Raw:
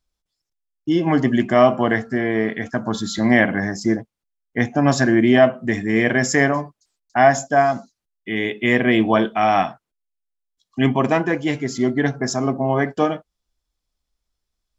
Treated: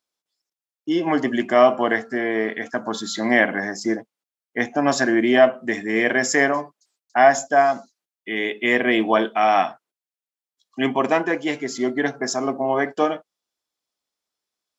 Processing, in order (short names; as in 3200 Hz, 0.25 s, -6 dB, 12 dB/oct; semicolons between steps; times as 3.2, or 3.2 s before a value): HPF 310 Hz 12 dB/oct